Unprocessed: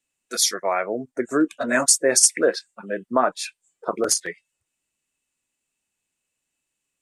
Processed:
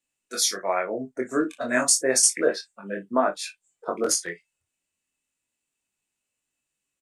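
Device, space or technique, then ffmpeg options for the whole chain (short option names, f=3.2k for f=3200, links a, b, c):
double-tracked vocal: -filter_complex "[0:a]asplit=2[a][b];[b]adelay=35,volume=-13dB[c];[a][c]amix=inputs=2:normalize=0,flanger=delay=20:depth=4:speed=0.31"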